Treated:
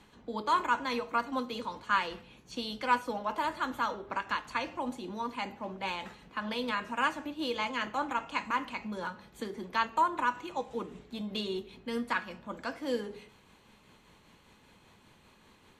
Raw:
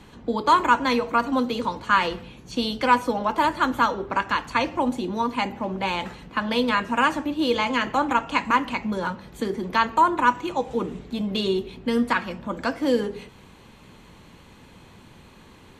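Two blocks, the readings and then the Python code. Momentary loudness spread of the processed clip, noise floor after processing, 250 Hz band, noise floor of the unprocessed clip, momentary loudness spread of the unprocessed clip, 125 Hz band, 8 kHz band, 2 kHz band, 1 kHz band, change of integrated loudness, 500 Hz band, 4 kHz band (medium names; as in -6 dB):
11 LU, -62 dBFS, -12.5 dB, -50 dBFS, 9 LU, -13.0 dB, -9.0 dB, -9.0 dB, -9.5 dB, -10.0 dB, -11.0 dB, -9.0 dB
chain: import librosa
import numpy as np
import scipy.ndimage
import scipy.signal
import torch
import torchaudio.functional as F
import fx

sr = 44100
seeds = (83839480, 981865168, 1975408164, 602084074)

y = fx.low_shelf(x, sr, hz=400.0, db=-6.0)
y = y * (1.0 - 0.29 / 2.0 + 0.29 / 2.0 * np.cos(2.0 * np.pi * 5.1 * (np.arange(len(y)) / sr)))
y = fx.comb_fb(y, sr, f0_hz=210.0, decay_s=0.45, harmonics='all', damping=0.0, mix_pct=50)
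y = F.gain(torch.from_numpy(y), -2.0).numpy()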